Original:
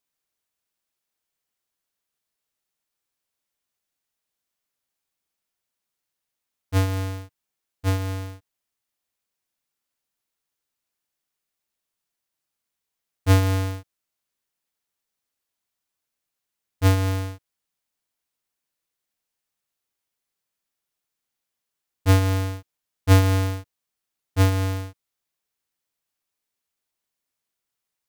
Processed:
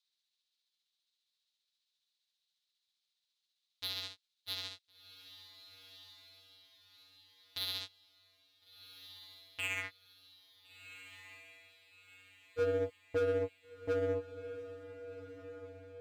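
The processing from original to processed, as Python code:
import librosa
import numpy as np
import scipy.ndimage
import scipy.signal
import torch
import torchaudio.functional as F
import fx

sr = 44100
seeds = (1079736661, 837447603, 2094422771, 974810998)

p1 = fx.filter_sweep_bandpass(x, sr, from_hz=3900.0, to_hz=480.0, start_s=16.29, end_s=19.62, q=5.1)
p2 = fx.over_compress(p1, sr, threshold_db=-43.0, ratio=-1.0)
p3 = p1 + (p2 * 10.0 ** (-2.0 / 20.0))
p4 = np.clip(10.0 ** (31.0 / 20.0) * p3, -1.0, 1.0) / 10.0 ** (31.0 / 20.0)
p5 = fx.low_shelf(p4, sr, hz=130.0, db=7.5)
p6 = fx.stretch_grains(p5, sr, factor=0.57, grain_ms=135.0)
p7 = p6 + fx.echo_diffused(p6, sr, ms=1433, feedback_pct=47, wet_db=-12, dry=0)
y = p7 * 10.0 ** (4.0 / 20.0)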